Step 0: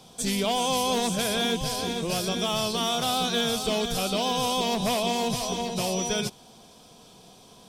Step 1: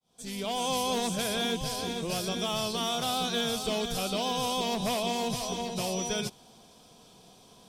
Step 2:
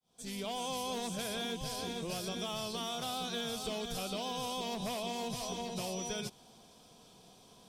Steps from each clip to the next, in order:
fade-in on the opening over 0.68 s; trim -4 dB
compression 3:1, threshold -32 dBFS, peak gain reduction 5 dB; trim -3.5 dB

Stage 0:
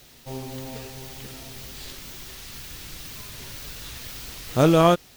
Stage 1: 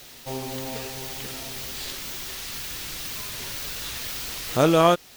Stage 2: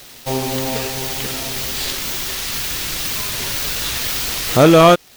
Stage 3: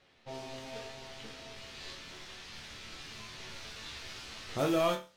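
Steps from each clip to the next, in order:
bass shelf 260 Hz -8.5 dB; in parallel at +1 dB: compression, threshold -34 dBFS, peak gain reduction 18.5 dB
waveshaping leveller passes 2; trim +3.5 dB
level-controlled noise filter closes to 2.6 kHz, open at -9 dBFS; chord resonator D2 major, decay 0.33 s; trim -8 dB

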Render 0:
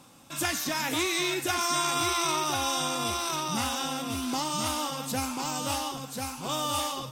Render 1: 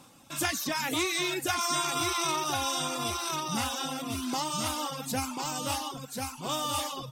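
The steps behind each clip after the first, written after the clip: reverb removal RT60 0.72 s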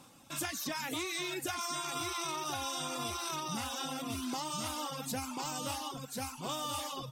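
compression, threshold -31 dBFS, peak gain reduction 7 dB; trim -2.5 dB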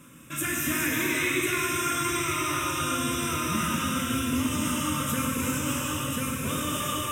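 static phaser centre 1.9 kHz, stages 4; gated-style reverb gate 490 ms flat, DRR -5 dB; trim +8 dB

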